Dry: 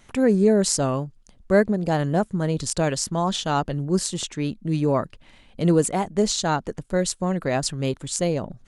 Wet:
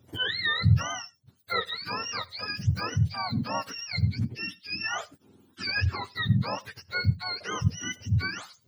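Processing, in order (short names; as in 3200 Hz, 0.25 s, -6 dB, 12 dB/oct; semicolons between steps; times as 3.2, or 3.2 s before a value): spectrum mirrored in octaves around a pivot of 890 Hz; reverb, pre-delay 55 ms, DRR 22.5 dB; gain -6.5 dB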